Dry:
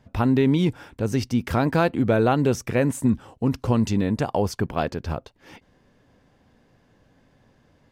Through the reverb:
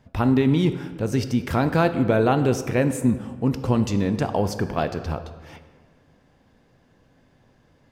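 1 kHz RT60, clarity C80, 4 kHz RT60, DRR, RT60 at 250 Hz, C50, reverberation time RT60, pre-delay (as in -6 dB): 1.6 s, 12.5 dB, 1.0 s, 9.0 dB, 1.8 s, 11.5 dB, 1.6 s, 6 ms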